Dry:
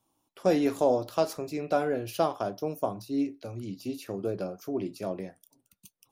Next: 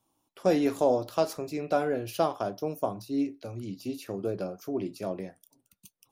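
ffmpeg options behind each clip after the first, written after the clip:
-af anull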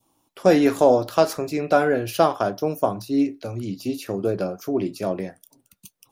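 -af "adynamicequalizer=threshold=0.00562:dfrequency=1600:dqfactor=1.9:tfrequency=1600:tqfactor=1.9:attack=5:release=100:ratio=0.375:range=2.5:mode=boostabove:tftype=bell,volume=8dB"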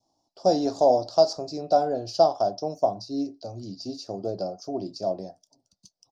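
-af "firequalizer=gain_entry='entry(470,0);entry(680,11);entry(1100,-6);entry(2100,-21);entry(4800,14);entry(11000,-25)':delay=0.05:min_phase=1,volume=-8.5dB"

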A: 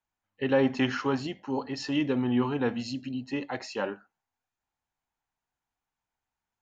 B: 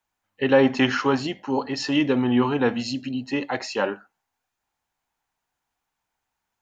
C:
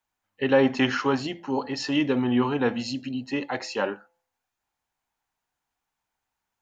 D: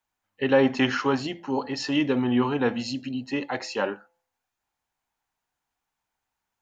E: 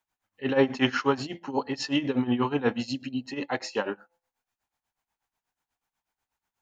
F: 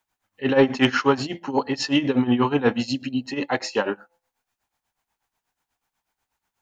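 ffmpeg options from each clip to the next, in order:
-af "lowshelf=f=240:g=-5,volume=8dB"
-af "bandreject=f=170.4:t=h:w=4,bandreject=f=340.8:t=h:w=4,bandreject=f=511.2:t=h:w=4,bandreject=f=681.6:t=h:w=4,bandreject=f=852:t=h:w=4,volume=-2.5dB"
-af anull
-af "tremolo=f=8.2:d=0.83,volume=1.5dB"
-af "asoftclip=type=tanh:threshold=-10dB,volume=6dB"

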